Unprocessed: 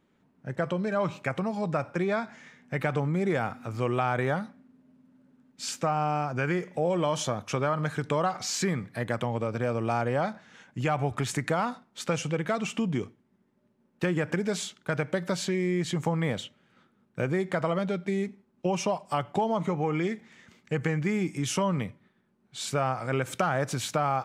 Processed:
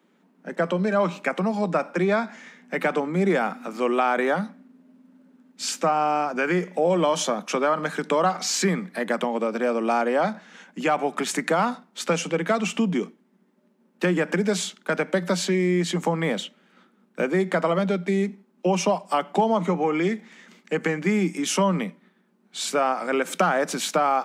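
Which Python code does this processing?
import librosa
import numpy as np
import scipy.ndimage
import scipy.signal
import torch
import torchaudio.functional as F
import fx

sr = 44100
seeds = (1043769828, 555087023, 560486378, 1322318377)

y = scipy.signal.sosfilt(scipy.signal.butter(16, 170.0, 'highpass', fs=sr, output='sos'), x)
y = F.gain(torch.from_numpy(y), 6.0).numpy()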